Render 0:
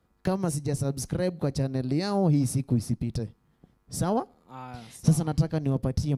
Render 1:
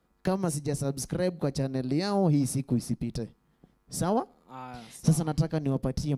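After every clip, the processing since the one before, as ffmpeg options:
ffmpeg -i in.wav -af "equalizer=frequency=95:width=2.4:gain=-12" out.wav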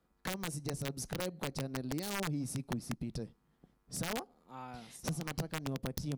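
ffmpeg -i in.wav -af "acompressor=threshold=-30dB:ratio=3,aeval=exprs='(mod(14.1*val(0)+1,2)-1)/14.1':channel_layout=same,volume=-5dB" out.wav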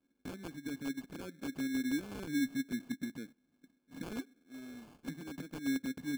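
ffmpeg -i in.wav -filter_complex "[0:a]asplit=2[link_01][link_02];[link_02]highpass=frequency=720:poles=1,volume=9dB,asoftclip=type=tanh:threshold=-27.5dB[link_03];[link_01][link_03]amix=inputs=2:normalize=0,lowpass=frequency=2000:poles=1,volume=-6dB,asplit=3[link_04][link_05][link_06];[link_04]bandpass=frequency=270:width_type=q:width=8,volume=0dB[link_07];[link_05]bandpass=frequency=2290:width_type=q:width=8,volume=-6dB[link_08];[link_06]bandpass=frequency=3010:width_type=q:width=8,volume=-9dB[link_09];[link_07][link_08][link_09]amix=inputs=3:normalize=0,acrusher=samples=23:mix=1:aa=0.000001,volume=11.5dB" out.wav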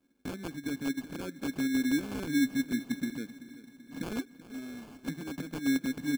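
ffmpeg -i in.wav -af "aecho=1:1:384|768|1152|1536|1920:0.158|0.0856|0.0462|0.025|0.0135,volume=6dB" out.wav

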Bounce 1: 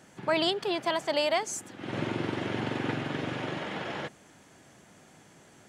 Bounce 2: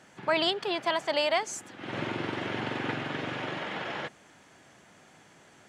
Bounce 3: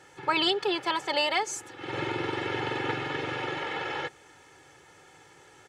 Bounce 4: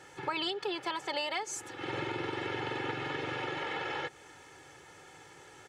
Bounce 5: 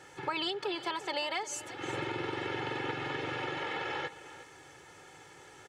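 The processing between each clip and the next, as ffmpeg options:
ffmpeg -i in.wav -af "lowpass=frequency=3700:poles=1,tiltshelf=frequency=640:gain=-4" out.wav
ffmpeg -i in.wav -af "aecho=1:1:2.3:0.83" out.wav
ffmpeg -i in.wav -af "acompressor=threshold=-35dB:ratio=3,volume=1dB" out.wav
ffmpeg -i in.wav -af "aecho=1:1:356:0.168" out.wav

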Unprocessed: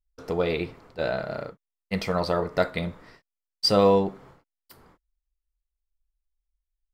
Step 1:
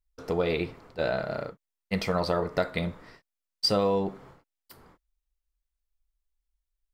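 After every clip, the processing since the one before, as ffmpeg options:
ffmpeg -i in.wav -af "acompressor=threshold=-21dB:ratio=6" out.wav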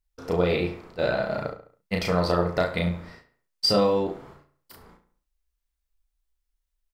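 ffmpeg -i in.wav -filter_complex "[0:a]asplit=2[link_01][link_02];[link_02]adelay=34,volume=-3dB[link_03];[link_01][link_03]amix=inputs=2:normalize=0,asplit=2[link_04][link_05];[link_05]adelay=69,lowpass=frequency=4000:poles=1,volume=-11.5dB,asplit=2[link_06][link_07];[link_07]adelay=69,lowpass=frequency=4000:poles=1,volume=0.43,asplit=2[link_08][link_09];[link_09]adelay=69,lowpass=frequency=4000:poles=1,volume=0.43,asplit=2[link_10][link_11];[link_11]adelay=69,lowpass=frequency=4000:poles=1,volume=0.43[link_12];[link_06][link_08][link_10][link_12]amix=inputs=4:normalize=0[link_13];[link_04][link_13]amix=inputs=2:normalize=0,volume=1.5dB" out.wav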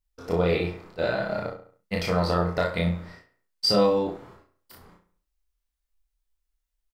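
ffmpeg -i in.wav -filter_complex "[0:a]asplit=2[link_01][link_02];[link_02]adelay=24,volume=-4.5dB[link_03];[link_01][link_03]amix=inputs=2:normalize=0,volume=-2dB" out.wav

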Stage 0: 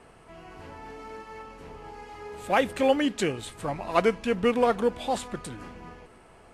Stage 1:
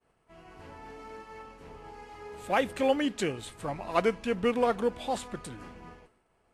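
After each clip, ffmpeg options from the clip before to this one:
ffmpeg -i in.wav -af "agate=range=-33dB:threshold=-43dB:ratio=3:detection=peak,volume=-3.5dB" out.wav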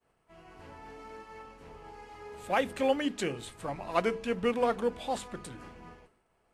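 ffmpeg -i in.wav -af "bandreject=frequency=50:width_type=h:width=6,bandreject=frequency=100:width_type=h:width=6,bandreject=frequency=150:width_type=h:width=6,bandreject=frequency=200:width_type=h:width=6,bandreject=frequency=250:width_type=h:width=6,bandreject=frequency=300:width_type=h:width=6,bandreject=frequency=350:width_type=h:width=6,bandreject=frequency=400:width_type=h:width=6,bandreject=frequency=450:width_type=h:width=6,volume=-1.5dB" out.wav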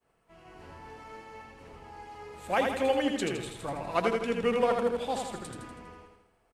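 ffmpeg -i in.wav -af "aecho=1:1:81|162|243|324|405|486|567:0.631|0.328|0.171|0.0887|0.0461|0.024|0.0125" out.wav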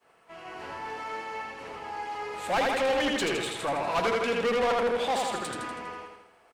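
ffmpeg -i in.wav -filter_complex "[0:a]asplit=2[link_01][link_02];[link_02]highpass=frequency=720:poles=1,volume=25dB,asoftclip=type=tanh:threshold=-13dB[link_03];[link_01][link_03]amix=inputs=2:normalize=0,lowpass=frequency=4500:poles=1,volume=-6dB,volume=-5.5dB" out.wav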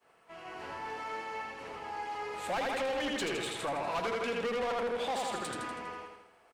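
ffmpeg -i in.wav -af "acompressor=threshold=-28dB:ratio=6,volume=-3dB" out.wav

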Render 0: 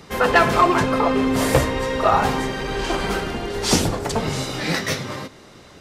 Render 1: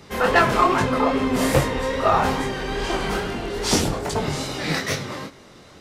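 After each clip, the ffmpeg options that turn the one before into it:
ffmpeg -i in.wav -af "flanger=delay=20:depth=6.8:speed=2.4,aeval=exprs='0.501*(cos(1*acos(clip(val(0)/0.501,-1,1)))-cos(1*PI/2))+0.00355*(cos(8*acos(clip(val(0)/0.501,-1,1)))-cos(8*PI/2))':channel_layout=same,volume=1.5dB" out.wav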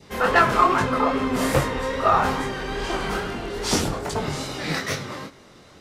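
ffmpeg -i in.wav -af "adynamicequalizer=threshold=0.0251:dfrequency=1300:dqfactor=2.1:tfrequency=1300:tqfactor=2.1:attack=5:release=100:ratio=0.375:range=2.5:mode=boostabove:tftype=bell,volume=-2.5dB" out.wav

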